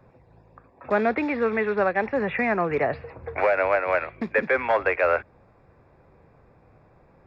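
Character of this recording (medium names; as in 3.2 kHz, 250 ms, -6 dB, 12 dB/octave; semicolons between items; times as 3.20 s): noise floor -57 dBFS; spectral tilt 0.0 dB/octave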